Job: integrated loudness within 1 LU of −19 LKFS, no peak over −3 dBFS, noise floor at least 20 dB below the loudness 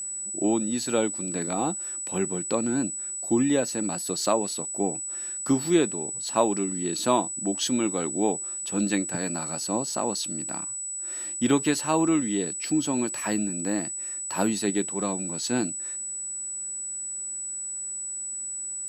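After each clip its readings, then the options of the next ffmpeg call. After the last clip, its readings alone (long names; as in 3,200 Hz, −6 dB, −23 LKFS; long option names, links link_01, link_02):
interfering tone 7,900 Hz; level of the tone −31 dBFS; integrated loudness −26.5 LKFS; sample peak −8.0 dBFS; target loudness −19.0 LKFS
→ -af "bandreject=frequency=7900:width=30"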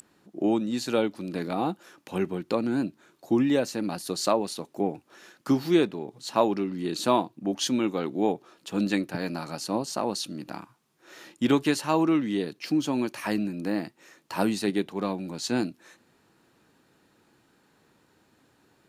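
interfering tone none found; integrated loudness −28.0 LKFS; sample peak −8.5 dBFS; target loudness −19.0 LKFS
→ -af "volume=9dB,alimiter=limit=-3dB:level=0:latency=1"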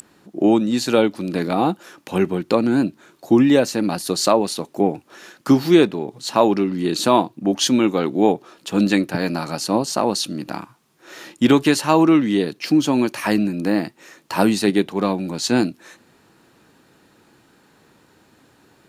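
integrated loudness −19.0 LKFS; sample peak −3.0 dBFS; background noise floor −56 dBFS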